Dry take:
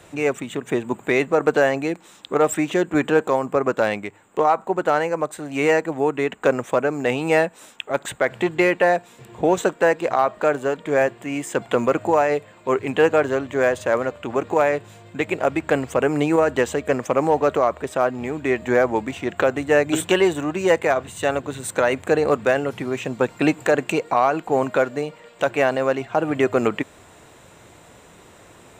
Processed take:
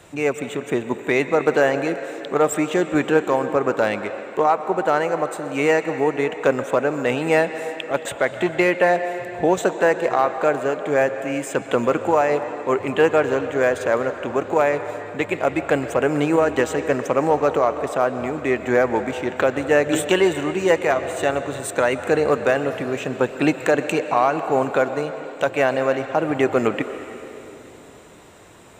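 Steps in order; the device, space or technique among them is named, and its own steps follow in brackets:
filtered reverb send (on a send: high-pass filter 280 Hz + low-pass filter 6,100 Hz 12 dB per octave + convolution reverb RT60 3.2 s, pre-delay 112 ms, DRR 9 dB)

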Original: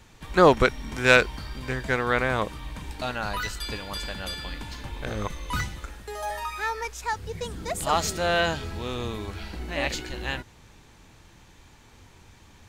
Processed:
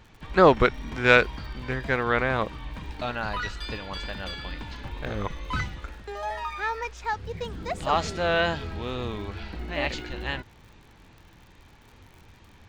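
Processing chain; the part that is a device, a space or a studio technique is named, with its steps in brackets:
lo-fi chain (low-pass filter 4,000 Hz 12 dB per octave; tape wow and flutter; surface crackle 89 per second −44 dBFS)

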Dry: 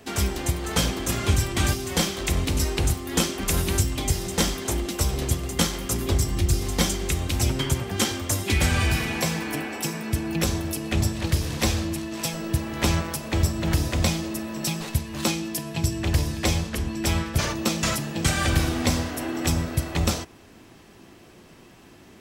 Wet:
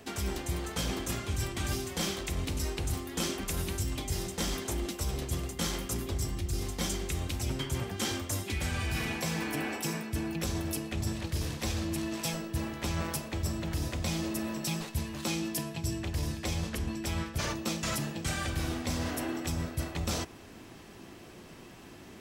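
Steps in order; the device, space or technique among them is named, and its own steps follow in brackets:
compression on the reversed sound (reversed playback; downward compressor, threshold −30 dBFS, peak gain reduction 14 dB; reversed playback)

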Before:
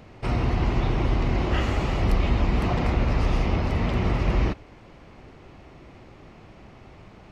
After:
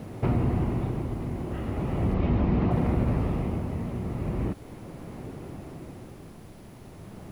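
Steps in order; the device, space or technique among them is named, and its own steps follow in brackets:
medium wave at night (band-pass filter 150–4,000 Hz; downward compressor, threshold −32 dBFS, peak gain reduction 9 dB; amplitude tremolo 0.38 Hz, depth 63%; steady tone 10,000 Hz −57 dBFS; white noise bed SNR 13 dB)
0:02.14–0:02.71: low-pass filter 5,600 Hz 24 dB per octave
spectral tilt −4 dB per octave
level +3 dB

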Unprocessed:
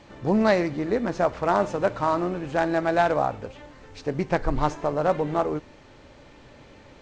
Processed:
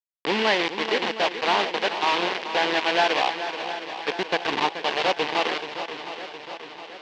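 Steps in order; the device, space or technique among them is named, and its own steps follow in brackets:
hand-held game console (bit reduction 4 bits; loudspeaker in its box 460–4,400 Hz, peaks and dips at 610 Hz −10 dB, 1,300 Hz −9 dB, 2,900 Hz +4 dB)
feedback echo with a long and a short gap by turns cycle 715 ms, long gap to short 1.5 to 1, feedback 55%, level −10.5 dB
level +4 dB

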